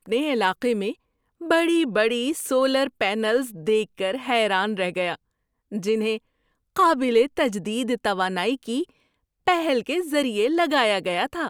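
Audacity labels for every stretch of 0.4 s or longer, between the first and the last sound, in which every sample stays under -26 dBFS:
0.920000	1.500000	silence
5.150000	5.730000	silence
6.170000	6.760000	silence
8.830000	9.480000	silence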